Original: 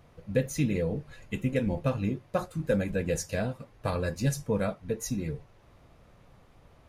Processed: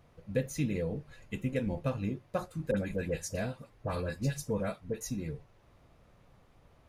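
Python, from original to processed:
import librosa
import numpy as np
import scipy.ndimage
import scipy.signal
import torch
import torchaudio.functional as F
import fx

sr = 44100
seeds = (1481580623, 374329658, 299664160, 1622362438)

y = fx.dispersion(x, sr, late='highs', ms=62.0, hz=1600.0, at=(2.71, 5.01))
y = y * 10.0 ** (-4.5 / 20.0)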